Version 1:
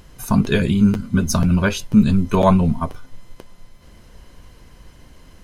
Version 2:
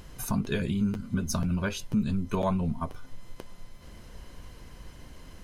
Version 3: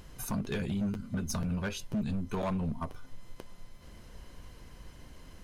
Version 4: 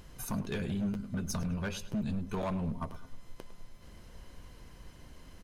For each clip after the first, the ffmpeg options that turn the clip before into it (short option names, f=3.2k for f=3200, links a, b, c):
-af "acompressor=threshold=-32dB:ratio=2,volume=-1.5dB"
-af "asoftclip=type=hard:threshold=-24dB,volume=-3.5dB"
-filter_complex "[0:a]asplit=2[a][b];[b]adelay=104,lowpass=f=3.5k:p=1,volume=-13.5dB,asplit=2[c][d];[d]adelay=104,lowpass=f=3.5k:p=1,volume=0.41,asplit=2[e][f];[f]adelay=104,lowpass=f=3.5k:p=1,volume=0.41,asplit=2[g][h];[h]adelay=104,lowpass=f=3.5k:p=1,volume=0.41[i];[a][c][e][g][i]amix=inputs=5:normalize=0,volume=-1.5dB"